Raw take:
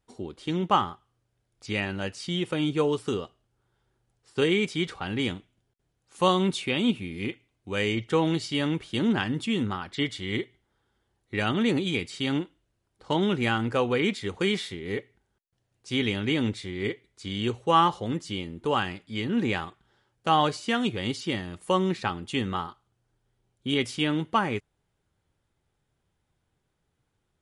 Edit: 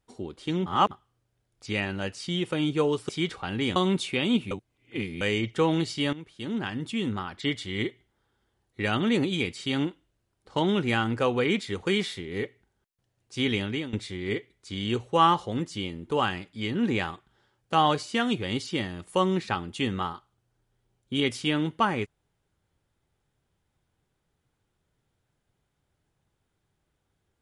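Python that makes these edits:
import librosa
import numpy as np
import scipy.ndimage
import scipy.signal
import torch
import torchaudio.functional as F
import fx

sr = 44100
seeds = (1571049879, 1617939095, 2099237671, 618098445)

y = fx.edit(x, sr, fx.reverse_span(start_s=0.66, length_s=0.25),
    fx.cut(start_s=3.09, length_s=1.58),
    fx.cut(start_s=5.34, length_s=0.96),
    fx.reverse_span(start_s=7.05, length_s=0.7),
    fx.fade_in_from(start_s=8.67, length_s=1.71, curve='qsin', floor_db=-16.0),
    fx.fade_out_to(start_s=16.16, length_s=0.31, floor_db=-18.0), tone=tone)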